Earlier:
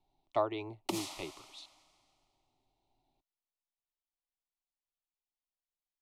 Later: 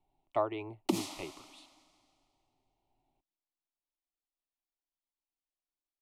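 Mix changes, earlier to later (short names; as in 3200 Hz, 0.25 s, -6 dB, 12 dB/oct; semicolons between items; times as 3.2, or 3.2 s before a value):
speech: add band shelf 4900 Hz -9.5 dB 1.1 oct; background: add bell 250 Hz +12.5 dB 1.1 oct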